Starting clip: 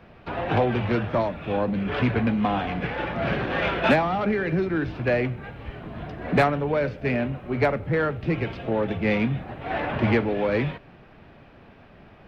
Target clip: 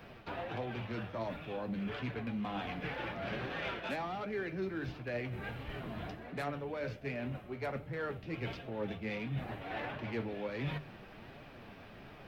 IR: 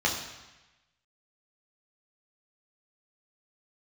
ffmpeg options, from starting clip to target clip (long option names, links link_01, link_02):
-af "bandreject=frequency=50:width_type=h:width=6,bandreject=frequency=100:width_type=h:width=6,bandreject=frequency=150:width_type=h:width=6,areverse,acompressor=threshold=-35dB:ratio=6,areverse,flanger=delay=6.3:depth=4.5:regen=59:speed=1.4:shape=triangular,crystalizer=i=2.5:c=0,volume=1.5dB"